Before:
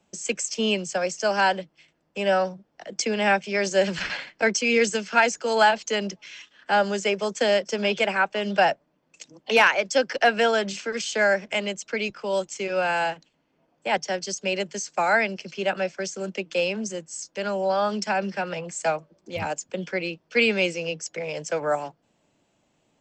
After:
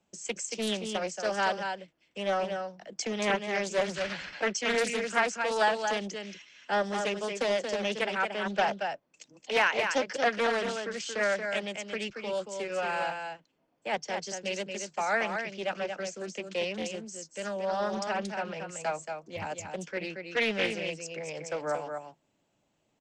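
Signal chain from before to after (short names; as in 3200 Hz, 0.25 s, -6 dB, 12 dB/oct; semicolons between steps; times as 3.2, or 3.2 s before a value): echo 0.229 s -6 dB; Doppler distortion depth 0.41 ms; gain -7.5 dB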